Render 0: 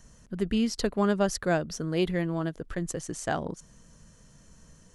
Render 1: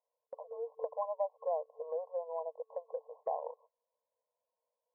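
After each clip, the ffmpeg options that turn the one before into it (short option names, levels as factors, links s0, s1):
-af "afftfilt=real='re*between(b*sr/4096,450,1100)':imag='im*between(b*sr/4096,450,1100)':win_size=4096:overlap=0.75,agate=range=0.0398:threshold=0.00141:ratio=16:detection=peak,acompressor=threshold=0.00355:ratio=2,volume=2.24"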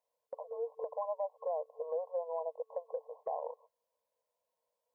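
-af "alimiter=level_in=2:limit=0.0631:level=0:latency=1:release=51,volume=0.501,volume=1.33"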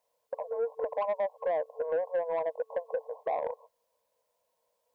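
-af "asoftclip=type=tanh:threshold=0.0266,volume=2.66"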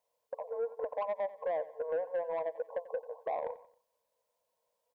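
-af "aecho=1:1:90|180|270:0.141|0.0565|0.0226,volume=0.631"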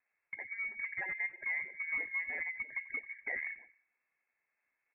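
-af "bandreject=f=50.72:t=h:w=4,bandreject=f=101.44:t=h:w=4,bandreject=f=152.16:t=h:w=4,bandreject=f=202.88:t=h:w=4,bandreject=f=253.6:t=h:w=4,bandreject=f=304.32:t=h:w=4,bandreject=f=355.04:t=h:w=4,bandreject=f=405.76:t=h:w=4,bandreject=f=456.48:t=h:w=4,bandreject=f=507.2:t=h:w=4,bandreject=f=557.92:t=h:w=4,bandreject=f=608.64:t=h:w=4,bandreject=f=659.36:t=h:w=4,acrusher=samples=12:mix=1:aa=0.000001:lfo=1:lforange=7.2:lforate=3.1,lowpass=f=2300:t=q:w=0.5098,lowpass=f=2300:t=q:w=0.6013,lowpass=f=2300:t=q:w=0.9,lowpass=f=2300:t=q:w=2.563,afreqshift=-2700,volume=0.794"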